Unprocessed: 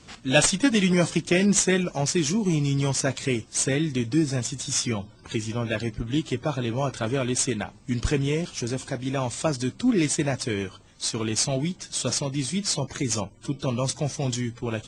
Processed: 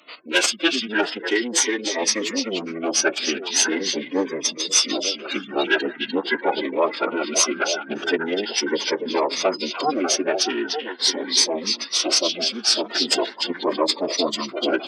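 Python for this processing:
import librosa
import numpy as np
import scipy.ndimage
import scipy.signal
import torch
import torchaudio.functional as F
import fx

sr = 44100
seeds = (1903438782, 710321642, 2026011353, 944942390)

p1 = fx.high_shelf(x, sr, hz=4800.0, db=-12.0)
p2 = fx.spec_gate(p1, sr, threshold_db=-25, keep='strong')
p3 = 10.0 ** (-20.0 / 20.0) * np.tanh(p2 / 10.0 ** (-20.0 / 20.0))
p4 = p2 + (p3 * 10.0 ** (-3.5 / 20.0))
p5 = fx.pitch_keep_formants(p4, sr, semitones=-9.0)
p6 = fx.tilt_eq(p5, sr, slope=2.5)
p7 = fx.rider(p6, sr, range_db=5, speed_s=0.5)
p8 = scipy.signal.sosfilt(scipy.signal.butter(4, 330.0, 'highpass', fs=sr, output='sos'), p7)
p9 = fx.notch(p8, sr, hz=4000.0, q=19.0)
p10 = p9 + fx.echo_stepped(p9, sr, ms=297, hz=3400.0, octaves=-1.4, feedback_pct=70, wet_db=-1, dry=0)
p11 = fx.notch_cascade(p10, sr, direction='rising', hz=0.42)
y = p11 * 10.0 ** (8.0 / 20.0)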